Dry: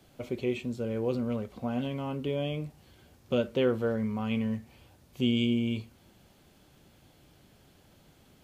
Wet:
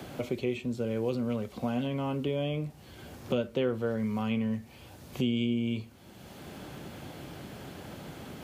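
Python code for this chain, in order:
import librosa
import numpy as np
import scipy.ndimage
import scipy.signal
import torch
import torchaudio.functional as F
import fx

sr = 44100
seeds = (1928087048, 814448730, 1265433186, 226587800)

y = scipy.signal.sosfilt(scipy.signal.butter(2, 56.0, 'highpass', fs=sr, output='sos'), x)
y = fx.band_squash(y, sr, depth_pct=70)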